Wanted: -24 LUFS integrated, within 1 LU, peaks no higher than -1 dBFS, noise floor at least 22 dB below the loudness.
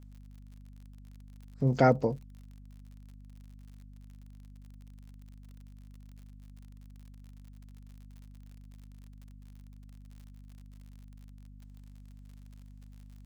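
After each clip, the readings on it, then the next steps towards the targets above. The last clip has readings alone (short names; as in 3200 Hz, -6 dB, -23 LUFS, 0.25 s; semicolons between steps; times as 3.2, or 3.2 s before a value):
ticks 58/s; hum 50 Hz; harmonics up to 250 Hz; hum level -48 dBFS; loudness -27.5 LUFS; peak -10.0 dBFS; loudness target -24.0 LUFS
-> de-click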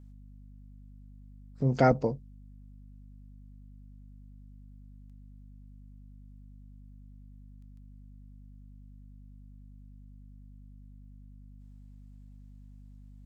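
ticks 0.23/s; hum 50 Hz; harmonics up to 250 Hz; hum level -48 dBFS
-> notches 50/100/150/200/250 Hz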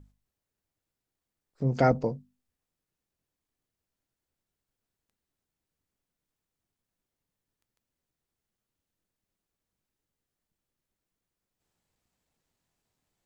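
hum none; loudness -27.0 LUFS; peak -10.5 dBFS; loudness target -24.0 LUFS
-> gain +3 dB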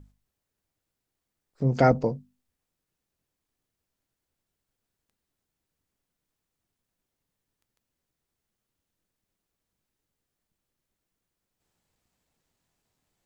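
loudness -24.0 LUFS; peak -7.5 dBFS; noise floor -85 dBFS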